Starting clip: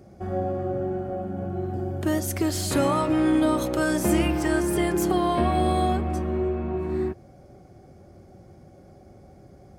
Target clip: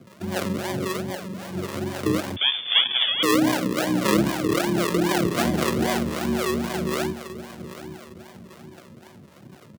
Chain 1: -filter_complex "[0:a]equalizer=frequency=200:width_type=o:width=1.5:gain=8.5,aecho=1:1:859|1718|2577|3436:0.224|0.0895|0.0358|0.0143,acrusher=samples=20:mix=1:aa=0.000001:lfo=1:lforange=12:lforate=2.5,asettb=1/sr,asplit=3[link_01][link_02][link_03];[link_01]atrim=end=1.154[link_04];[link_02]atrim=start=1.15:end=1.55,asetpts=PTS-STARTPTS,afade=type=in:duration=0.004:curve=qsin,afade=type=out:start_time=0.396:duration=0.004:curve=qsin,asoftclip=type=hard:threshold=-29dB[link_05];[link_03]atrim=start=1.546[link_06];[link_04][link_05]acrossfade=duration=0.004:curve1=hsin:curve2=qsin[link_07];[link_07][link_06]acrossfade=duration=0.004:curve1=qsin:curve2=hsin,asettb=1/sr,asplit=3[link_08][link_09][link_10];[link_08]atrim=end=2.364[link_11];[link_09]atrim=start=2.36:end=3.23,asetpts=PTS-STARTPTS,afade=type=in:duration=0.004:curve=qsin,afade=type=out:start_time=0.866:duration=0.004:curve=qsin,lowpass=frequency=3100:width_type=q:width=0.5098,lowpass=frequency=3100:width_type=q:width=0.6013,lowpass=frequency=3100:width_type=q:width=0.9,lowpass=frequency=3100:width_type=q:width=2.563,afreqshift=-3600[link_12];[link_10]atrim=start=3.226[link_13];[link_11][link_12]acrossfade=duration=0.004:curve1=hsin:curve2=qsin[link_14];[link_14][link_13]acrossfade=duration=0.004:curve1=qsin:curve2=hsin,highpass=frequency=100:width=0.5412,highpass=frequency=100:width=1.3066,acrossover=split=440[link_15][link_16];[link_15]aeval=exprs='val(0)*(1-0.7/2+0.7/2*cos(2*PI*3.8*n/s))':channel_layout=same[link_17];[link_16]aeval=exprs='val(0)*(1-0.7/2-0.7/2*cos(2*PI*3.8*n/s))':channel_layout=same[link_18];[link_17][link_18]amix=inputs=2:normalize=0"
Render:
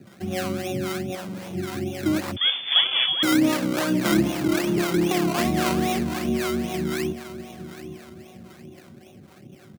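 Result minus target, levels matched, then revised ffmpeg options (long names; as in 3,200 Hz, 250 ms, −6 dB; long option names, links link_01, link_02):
sample-and-hold swept by an LFO: distortion −9 dB
-filter_complex "[0:a]equalizer=frequency=200:width_type=o:width=1.5:gain=8.5,aecho=1:1:859|1718|2577|3436:0.224|0.0895|0.0358|0.0143,acrusher=samples=46:mix=1:aa=0.000001:lfo=1:lforange=27.6:lforate=2.5,asettb=1/sr,asplit=3[link_01][link_02][link_03];[link_01]atrim=end=1.154[link_04];[link_02]atrim=start=1.15:end=1.55,asetpts=PTS-STARTPTS,afade=type=in:duration=0.004:curve=qsin,afade=type=out:start_time=0.396:duration=0.004:curve=qsin,asoftclip=type=hard:threshold=-29dB[link_05];[link_03]atrim=start=1.546[link_06];[link_04][link_05]acrossfade=duration=0.004:curve1=hsin:curve2=qsin[link_07];[link_07][link_06]acrossfade=duration=0.004:curve1=qsin:curve2=hsin,asettb=1/sr,asplit=3[link_08][link_09][link_10];[link_08]atrim=end=2.364[link_11];[link_09]atrim=start=2.36:end=3.23,asetpts=PTS-STARTPTS,afade=type=in:duration=0.004:curve=qsin,afade=type=out:start_time=0.866:duration=0.004:curve=qsin,lowpass=frequency=3100:width_type=q:width=0.5098,lowpass=frequency=3100:width_type=q:width=0.6013,lowpass=frequency=3100:width_type=q:width=0.9,lowpass=frequency=3100:width_type=q:width=2.563,afreqshift=-3600[link_12];[link_10]atrim=start=3.226[link_13];[link_11][link_12]acrossfade=duration=0.004:curve1=hsin:curve2=qsin[link_14];[link_14][link_13]acrossfade=duration=0.004:curve1=qsin:curve2=hsin,highpass=frequency=100:width=0.5412,highpass=frequency=100:width=1.3066,acrossover=split=440[link_15][link_16];[link_15]aeval=exprs='val(0)*(1-0.7/2+0.7/2*cos(2*PI*3.8*n/s))':channel_layout=same[link_17];[link_16]aeval=exprs='val(0)*(1-0.7/2-0.7/2*cos(2*PI*3.8*n/s))':channel_layout=same[link_18];[link_17][link_18]amix=inputs=2:normalize=0"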